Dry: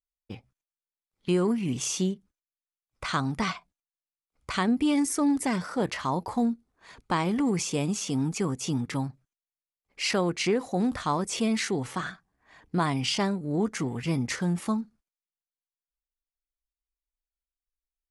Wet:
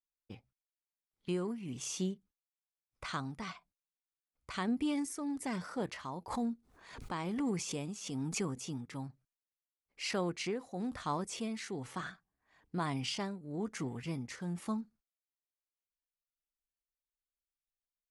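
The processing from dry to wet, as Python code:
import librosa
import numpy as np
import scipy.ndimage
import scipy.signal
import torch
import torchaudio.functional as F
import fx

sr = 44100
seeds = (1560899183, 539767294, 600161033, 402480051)

y = fx.tremolo_shape(x, sr, shape='triangle', hz=1.1, depth_pct=55)
y = fx.pre_swell(y, sr, db_per_s=74.0, at=(6.3, 8.67))
y = F.gain(torch.from_numpy(y), -8.0).numpy()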